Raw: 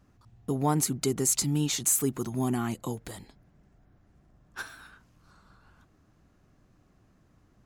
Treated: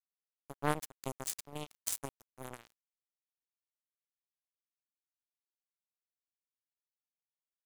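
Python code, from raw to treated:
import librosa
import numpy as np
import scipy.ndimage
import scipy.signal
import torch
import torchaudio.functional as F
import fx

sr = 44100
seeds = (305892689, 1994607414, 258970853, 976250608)

y = fx.low_shelf(x, sr, hz=120.0, db=7.5)
y = fx.power_curve(y, sr, exponent=3.0)
y = np.sign(y) * np.maximum(np.abs(y) - 10.0 ** (-39.5 / 20.0), 0.0)
y = y * librosa.db_to_amplitude(4.0)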